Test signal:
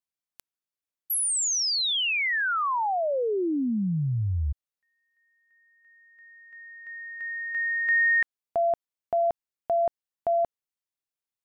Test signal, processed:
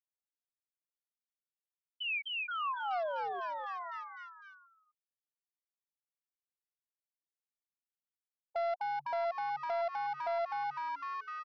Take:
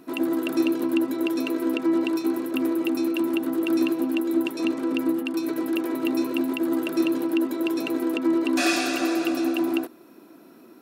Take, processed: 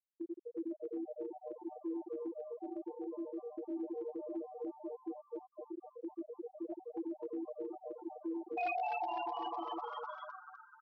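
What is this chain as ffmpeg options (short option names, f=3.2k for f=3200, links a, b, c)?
-filter_complex "[0:a]asplit=3[a][b][c];[a]bandpass=f=730:t=q:w=8,volume=0dB[d];[b]bandpass=f=1.09k:t=q:w=8,volume=-6dB[e];[c]bandpass=f=2.44k:t=q:w=8,volume=-9dB[f];[d][e][f]amix=inputs=3:normalize=0,lowshelf=f=470:g=3.5,afftfilt=real='re*gte(hypot(re,im),0.1)':imag='im*gte(hypot(re,im),0.1)':win_size=1024:overlap=0.75,aresample=11025,aeval=exprs='clip(val(0),-1,0.0422)':c=same,aresample=44100,acrossover=split=3400[g][h];[h]acompressor=threshold=-60dB:ratio=4:attack=1:release=60[i];[g][i]amix=inputs=2:normalize=0,aemphasis=mode=production:type=riaa,asplit=2[j][k];[k]asplit=6[l][m][n][o][p][q];[l]adelay=252,afreqshift=140,volume=-6dB[r];[m]adelay=504,afreqshift=280,volume=-12dB[s];[n]adelay=756,afreqshift=420,volume=-18dB[t];[o]adelay=1008,afreqshift=560,volume=-24.1dB[u];[p]adelay=1260,afreqshift=700,volume=-30.1dB[v];[q]adelay=1512,afreqshift=840,volume=-36.1dB[w];[r][s][t][u][v][w]amix=inputs=6:normalize=0[x];[j][x]amix=inputs=2:normalize=0,acompressor=threshold=-46dB:ratio=3:attack=0.32:release=143:knee=1:detection=peak,volume=10dB"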